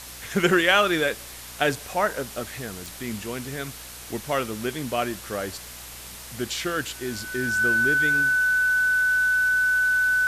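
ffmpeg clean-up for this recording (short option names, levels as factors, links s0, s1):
-af "adeclick=t=4,bandreject=f=60.5:t=h:w=4,bandreject=f=121:t=h:w=4,bandreject=f=181.5:t=h:w=4,bandreject=f=242:t=h:w=4,bandreject=f=1500:w=30,afwtdn=0.011"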